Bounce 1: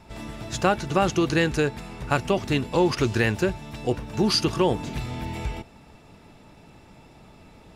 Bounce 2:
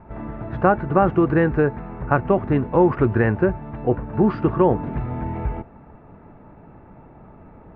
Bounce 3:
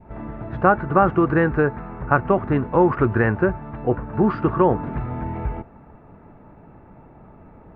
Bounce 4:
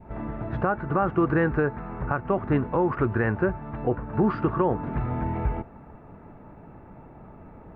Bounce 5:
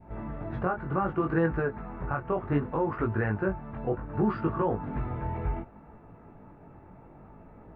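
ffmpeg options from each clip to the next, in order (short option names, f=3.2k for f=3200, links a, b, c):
-af "lowpass=f=1.6k:w=0.5412,lowpass=f=1.6k:w=1.3066,volume=5dB"
-af "adynamicequalizer=threshold=0.0158:dfrequency=1300:dqfactor=1.6:tfrequency=1300:tqfactor=1.6:attack=5:release=100:ratio=0.375:range=3:mode=boostabove:tftype=bell,volume=-1dB"
-af "alimiter=limit=-12.5dB:level=0:latency=1:release=393"
-af "flanger=delay=18:depth=4.4:speed=0.66,volume=-1.5dB"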